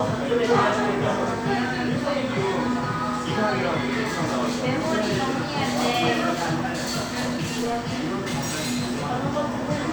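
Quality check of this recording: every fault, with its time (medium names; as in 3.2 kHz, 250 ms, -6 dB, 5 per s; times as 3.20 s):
6.64–9.12 s: clipped -21.5 dBFS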